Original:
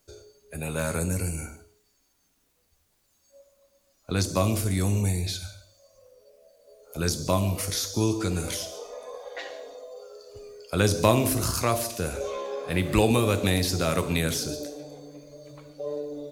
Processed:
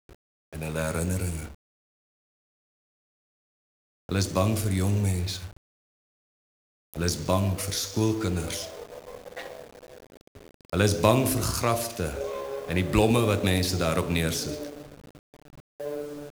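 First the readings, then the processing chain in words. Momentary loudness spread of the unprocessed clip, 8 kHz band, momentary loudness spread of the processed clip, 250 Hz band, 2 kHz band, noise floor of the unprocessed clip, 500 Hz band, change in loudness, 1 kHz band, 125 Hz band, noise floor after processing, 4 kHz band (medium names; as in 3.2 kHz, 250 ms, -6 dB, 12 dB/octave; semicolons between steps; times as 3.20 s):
21 LU, -2.0 dB, 18 LU, 0.0 dB, -0.5 dB, -69 dBFS, 0.0 dB, 0.0 dB, 0.0 dB, 0.0 dB, under -85 dBFS, -1.0 dB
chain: hysteresis with a dead band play -35 dBFS; word length cut 8-bit, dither none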